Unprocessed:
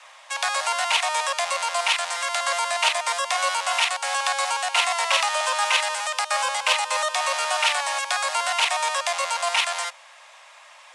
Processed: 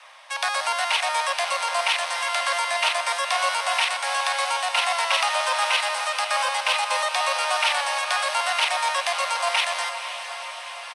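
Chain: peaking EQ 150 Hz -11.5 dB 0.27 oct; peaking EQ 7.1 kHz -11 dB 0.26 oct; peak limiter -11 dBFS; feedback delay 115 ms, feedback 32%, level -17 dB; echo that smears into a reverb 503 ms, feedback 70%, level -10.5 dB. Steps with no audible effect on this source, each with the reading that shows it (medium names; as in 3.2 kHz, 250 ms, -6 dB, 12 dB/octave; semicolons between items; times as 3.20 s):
peaking EQ 150 Hz: input has nothing below 450 Hz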